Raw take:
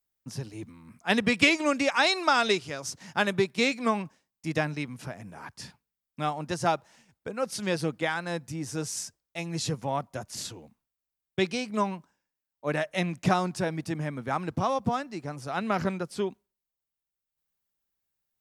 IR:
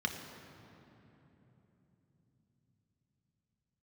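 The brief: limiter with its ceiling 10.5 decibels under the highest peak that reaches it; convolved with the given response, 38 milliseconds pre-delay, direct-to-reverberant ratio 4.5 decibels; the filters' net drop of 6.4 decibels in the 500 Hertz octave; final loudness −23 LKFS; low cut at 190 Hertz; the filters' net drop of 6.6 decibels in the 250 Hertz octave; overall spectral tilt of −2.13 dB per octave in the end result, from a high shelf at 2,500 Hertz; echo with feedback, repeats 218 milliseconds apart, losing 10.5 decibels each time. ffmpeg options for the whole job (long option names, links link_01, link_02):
-filter_complex "[0:a]highpass=190,equalizer=frequency=250:width_type=o:gain=-4.5,equalizer=frequency=500:width_type=o:gain=-7.5,highshelf=frequency=2500:gain=8.5,alimiter=limit=-14.5dB:level=0:latency=1,aecho=1:1:218|436|654:0.299|0.0896|0.0269,asplit=2[link_01][link_02];[1:a]atrim=start_sample=2205,adelay=38[link_03];[link_02][link_03]afir=irnorm=-1:irlink=0,volume=-9.5dB[link_04];[link_01][link_04]amix=inputs=2:normalize=0,volume=6dB"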